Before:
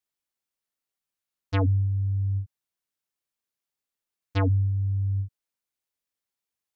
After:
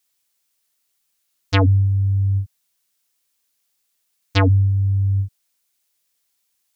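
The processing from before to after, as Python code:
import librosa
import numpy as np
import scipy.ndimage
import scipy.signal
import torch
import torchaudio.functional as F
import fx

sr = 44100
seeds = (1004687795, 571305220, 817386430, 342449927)

y = fx.high_shelf(x, sr, hz=2300.0, db=11.5)
y = F.gain(torch.from_numpy(y), 7.5).numpy()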